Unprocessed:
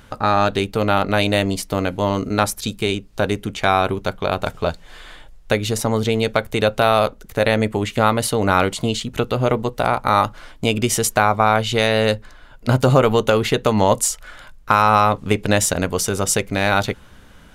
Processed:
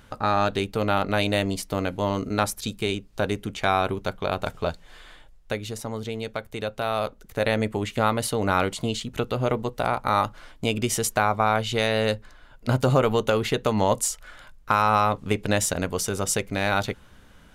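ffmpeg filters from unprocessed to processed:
-af "volume=1dB,afade=t=out:st=4.64:d=1.15:silence=0.446684,afade=t=in:st=6.76:d=0.74:silence=0.473151"

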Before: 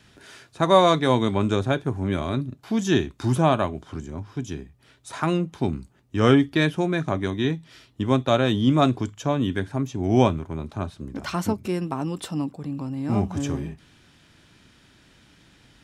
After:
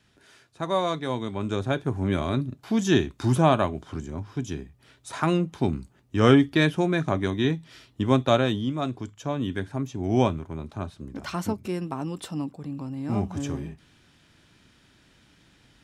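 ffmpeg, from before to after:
-af "volume=7.5dB,afade=t=in:st=1.33:d=0.69:silence=0.354813,afade=t=out:st=8.32:d=0.41:silence=0.281838,afade=t=in:st=8.73:d=0.88:silence=0.421697"

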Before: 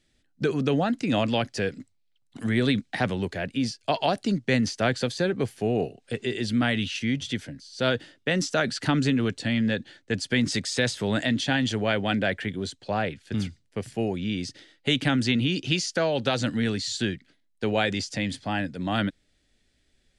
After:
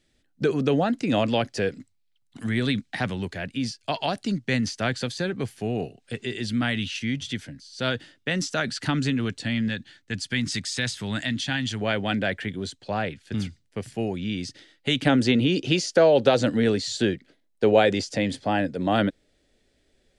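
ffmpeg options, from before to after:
-af "asetnsamples=n=441:p=0,asendcmd='1.77 equalizer g -4.5;9.68 equalizer g -11;11.81 equalizer g -1;15.06 equalizer g 10',equalizer=f=490:t=o:w=1.5:g=3"

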